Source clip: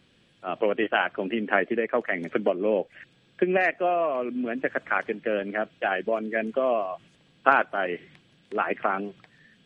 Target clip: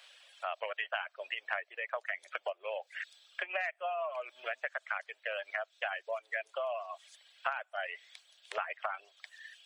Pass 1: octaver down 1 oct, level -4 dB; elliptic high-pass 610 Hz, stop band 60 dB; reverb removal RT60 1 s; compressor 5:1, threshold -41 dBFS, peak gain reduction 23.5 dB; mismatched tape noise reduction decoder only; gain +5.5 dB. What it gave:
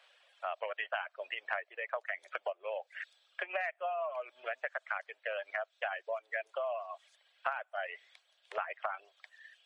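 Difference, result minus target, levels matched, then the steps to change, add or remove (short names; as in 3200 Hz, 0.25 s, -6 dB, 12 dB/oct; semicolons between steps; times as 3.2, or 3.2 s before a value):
4000 Hz band -3.5 dB
add after elliptic high-pass: high shelf 2600 Hz +11 dB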